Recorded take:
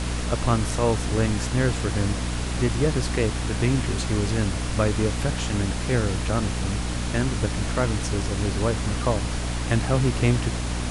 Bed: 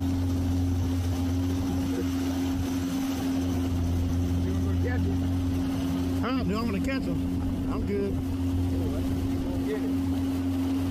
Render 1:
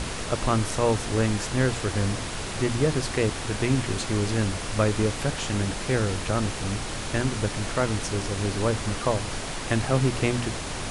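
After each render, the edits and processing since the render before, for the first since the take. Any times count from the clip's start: hum notches 60/120/180/240/300 Hz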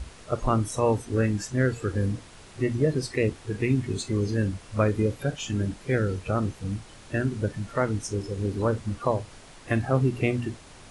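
noise print and reduce 16 dB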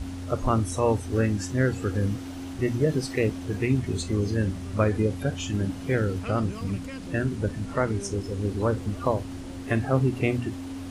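add bed -9 dB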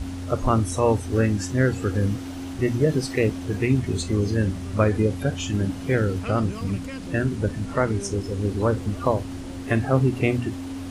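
trim +3 dB

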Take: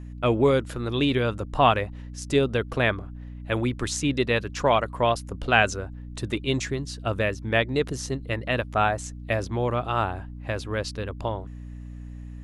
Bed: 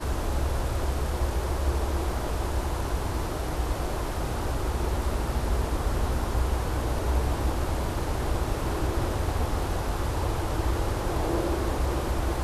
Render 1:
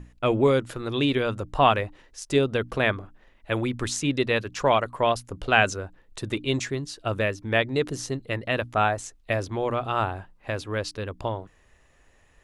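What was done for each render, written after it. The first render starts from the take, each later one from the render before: hum notches 60/120/180/240/300 Hz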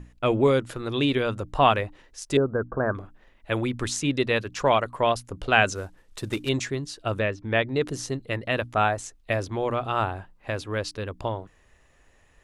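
2.37–2.95 s: Chebyshev low-pass 1.6 kHz, order 6; 5.75–6.49 s: CVSD coder 64 kbps; 7.20–7.81 s: distance through air 110 m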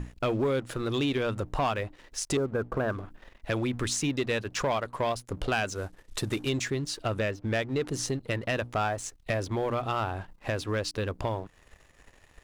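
compression 2.5:1, threshold -37 dBFS, peak gain reduction 15.5 dB; waveshaping leveller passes 2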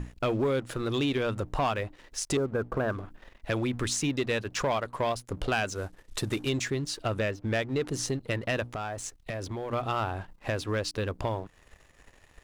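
8.63–9.73 s: compression, threshold -31 dBFS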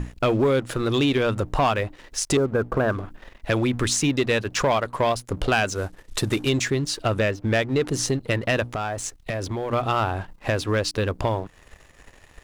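trim +7 dB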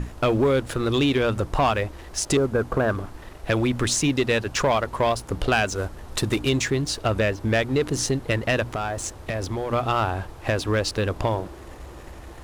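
add bed -14 dB

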